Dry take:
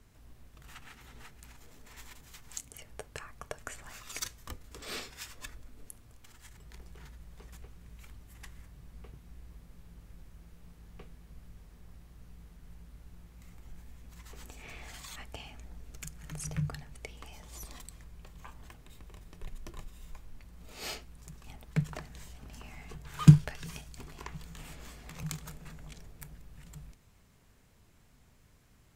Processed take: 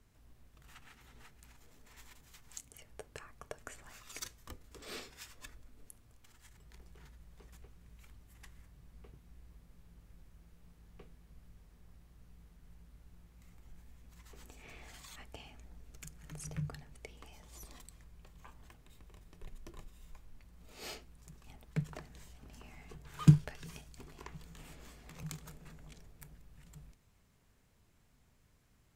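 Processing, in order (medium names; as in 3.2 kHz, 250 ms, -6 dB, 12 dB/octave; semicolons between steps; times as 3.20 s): dynamic bell 360 Hz, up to +4 dB, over -57 dBFS, Q 0.96; trim -6.5 dB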